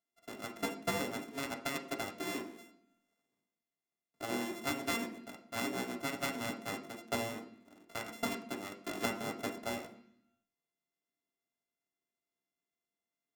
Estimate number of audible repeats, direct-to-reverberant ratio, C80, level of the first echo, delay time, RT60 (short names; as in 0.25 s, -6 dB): none, 1.0 dB, 14.0 dB, none, none, 0.65 s